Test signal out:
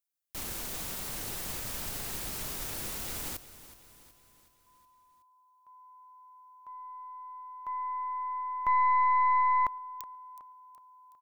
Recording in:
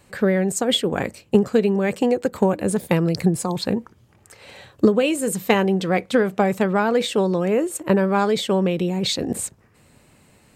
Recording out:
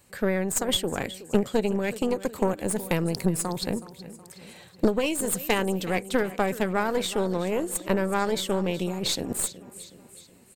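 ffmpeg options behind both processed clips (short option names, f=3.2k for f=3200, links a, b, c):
-af "crystalizer=i=1.5:c=0,aecho=1:1:371|742|1113|1484|1855:0.168|0.089|0.0472|0.025|0.0132,aeval=exprs='0.794*(cos(1*acos(clip(val(0)/0.794,-1,1)))-cos(1*PI/2))+0.178*(cos(2*acos(clip(val(0)/0.794,-1,1)))-cos(2*PI/2))+0.00501*(cos(3*acos(clip(val(0)/0.794,-1,1)))-cos(3*PI/2))+0.2*(cos(4*acos(clip(val(0)/0.794,-1,1)))-cos(4*PI/2))':c=same,volume=-7.5dB"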